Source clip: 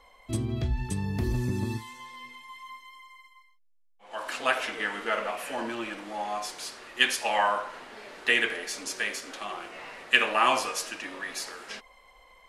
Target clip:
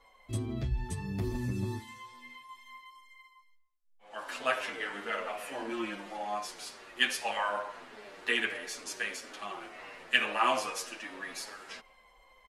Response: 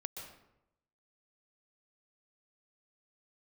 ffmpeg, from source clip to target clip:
-filter_complex "[0:a]asettb=1/sr,asplit=3[a][b][c];[a]atrim=end=5.714[d];[b]atrim=start=5.71:end=6.17,asetpts=PTS-STARTPTS,afade=t=in:d=0.004:c=qsin,afade=t=out:st=0.456:d=0.004:c=qsin,aecho=1:1:5.6:0.74,atrim=end_sample=20286[e];[c]atrim=start=6.166[f];[d][e]acrossfade=d=0.004:c1=hsin:c2=qsin[g];[g][f]acrossfade=d=0.004:c1=qsin:c2=hsin,asplit=2[h][i];[1:a]atrim=start_sample=2205,afade=t=out:st=0.38:d=0.01,atrim=end_sample=17199,lowpass=3.3k[j];[i][j]afir=irnorm=-1:irlink=0,volume=-15dB[k];[h][k]amix=inputs=2:normalize=0,asplit=2[l][m];[m]adelay=8.5,afreqshift=-2.3[n];[l][n]amix=inputs=2:normalize=1,volume=-2.5dB"

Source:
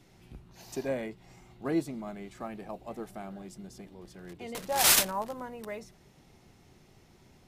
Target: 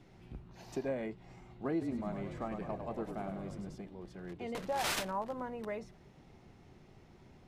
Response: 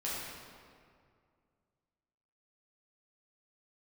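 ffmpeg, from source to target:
-filter_complex "[0:a]aemphasis=mode=reproduction:type=75kf,acompressor=threshold=-35dB:ratio=2.5,asettb=1/sr,asplit=3[a][b][c];[a]atrim=end=1.714[d];[b]atrim=start=1.71:end=3.75,asetpts=PTS-STARTPTS,afade=t=in:d=0.004:c=qsin,afade=t=out:st=2.036:d=0.004:c=qsin,asplit=9[e][f][g][h][i][j][k][l][m];[f]adelay=102,afreqshift=-45,volume=-6dB[n];[g]adelay=204,afreqshift=-90,volume=-10.4dB[o];[h]adelay=306,afreqshift=-135,volume=-14.9dB[p];[i]adelay=408,afreqshift=-180,volume=-19.3dB[q];[j]adelay=510,afreqshift=-225,volume=-23.7dB[r];[k]adelay=612,afreqshift=-270,volume=-28.2dB[s];[l]adelay=714,afreqshift=-315,volume=-32.6dB[t];[m]adelay=816,afreqshift=-360,volume=-37.1dB[u];[e][n][o][p][q][r][s][t][u]amix=inputs=9:normalize=0,atrim=end_sample=89964[v];[c]atrim=start=3.746[w];[d][v]acrossfade=d=0.004:c1=hsin:c2=qsin[x];[x][w]acrossfade=d=0.004:c1=qsin:c2=hsin,volume=1dB"

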